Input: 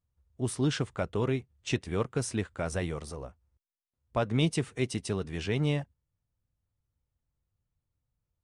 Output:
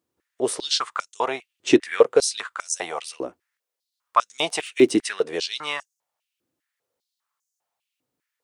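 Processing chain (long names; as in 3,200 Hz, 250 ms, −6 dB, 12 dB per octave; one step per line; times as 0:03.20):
0:04.27–0:04.98: surface crackle 16 per second → 45 per second −43 dBFS
high-pass on a step sequencer 5 Hz 320–6,400 Hz
level +9 dB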